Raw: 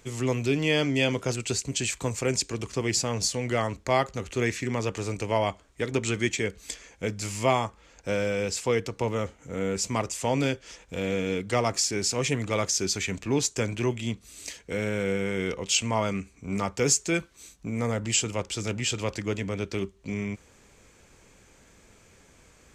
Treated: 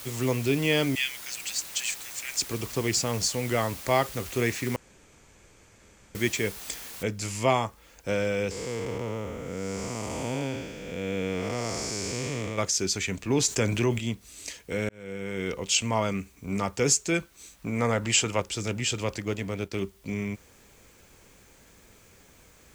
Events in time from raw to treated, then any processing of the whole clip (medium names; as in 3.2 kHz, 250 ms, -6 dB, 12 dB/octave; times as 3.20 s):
0.95–2.41 s: elliptic high-pass 1.7 kHz, stop band 60 dB
4.76–6.15 s: room tone
7.03 s: noise floor step -42 dB -63 dB
8.51–12.58 s: spectral blur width 381 ms
13.30–13.99 s: level flattener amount 50%
14.89–15.58 s: fade in
17.53–18.40 s: peaking EQ 1.3 kHz +6.5 dB 2.7 oct
19.18–19.79 s: companding laws mixed up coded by A